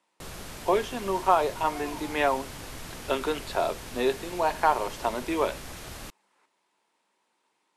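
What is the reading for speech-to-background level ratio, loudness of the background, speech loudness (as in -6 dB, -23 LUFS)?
12.5 dB, -40.5 LUFS, -28.0 LUFS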